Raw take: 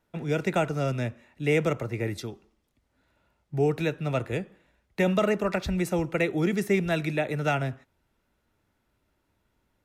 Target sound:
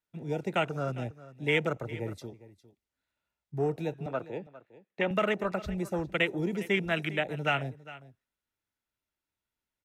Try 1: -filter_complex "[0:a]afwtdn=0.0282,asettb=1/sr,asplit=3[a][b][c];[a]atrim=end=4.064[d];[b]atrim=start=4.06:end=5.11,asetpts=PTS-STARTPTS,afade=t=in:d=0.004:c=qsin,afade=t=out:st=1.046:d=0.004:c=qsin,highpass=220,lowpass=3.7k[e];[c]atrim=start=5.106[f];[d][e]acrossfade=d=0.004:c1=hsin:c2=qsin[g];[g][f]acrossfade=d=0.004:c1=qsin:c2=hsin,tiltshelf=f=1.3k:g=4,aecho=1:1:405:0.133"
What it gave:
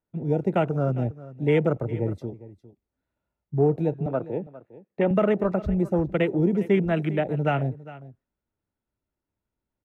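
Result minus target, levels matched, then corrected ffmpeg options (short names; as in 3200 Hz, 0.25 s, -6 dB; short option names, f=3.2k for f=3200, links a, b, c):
1000 Hz band -3.5 dB
-filter_complex "[0:a]afwtdn=0.0282,asettb=1/sr,asplit=3[a][b][c];[a]atrim=end=4.064[d];[b]atrim=start=4.06:end=5.11,asetpts=PTS-STARTPTS,afade=t=in:d=0.004:c=qsin,afade=t=out:st=1.046:d=0.004:c=qsin,highpass=220,lowpass=3.7k[e];[c]atrim=start=5.106[f];[d][e]acrossfade=d=0.004:c1=hsin:c2=qsin[g];[g][f]acrossfade=d=0.004:c1=qsin:c2=hsin,tiltshelf=f=1.3k:g=-6.5,aecho=1:1:405:0.133"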